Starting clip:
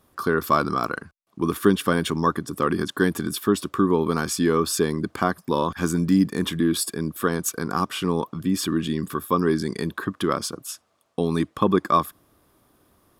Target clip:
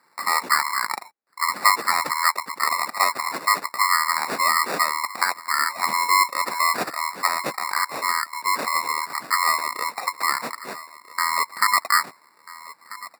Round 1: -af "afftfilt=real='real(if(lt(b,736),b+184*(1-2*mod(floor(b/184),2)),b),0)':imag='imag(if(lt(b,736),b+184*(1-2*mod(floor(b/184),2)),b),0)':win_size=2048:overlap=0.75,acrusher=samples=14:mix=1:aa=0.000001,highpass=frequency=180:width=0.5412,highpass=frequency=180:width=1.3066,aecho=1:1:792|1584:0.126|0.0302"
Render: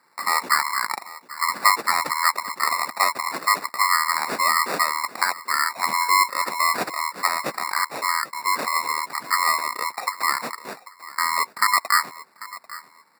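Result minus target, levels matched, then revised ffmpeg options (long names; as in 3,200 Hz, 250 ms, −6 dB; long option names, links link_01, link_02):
echo 498 ms early
-af "afftfilt=real='real(if(lt(b,736),b+184*(1-2*mod(floor(b/184),2)),b),0)':imag='imag(if(lt(b,736),b+184*(1-2*mod(floor(b/184),2)),b),0)':win_size=2048:overlap=0.75,acrusher=samples=14:mix=1:aa=0.000001,highpass=frequency=180:width=0.5412,highpass=frequency=180:width=1.3066,aecho=1:1:1290|2580:0.126|0.0302"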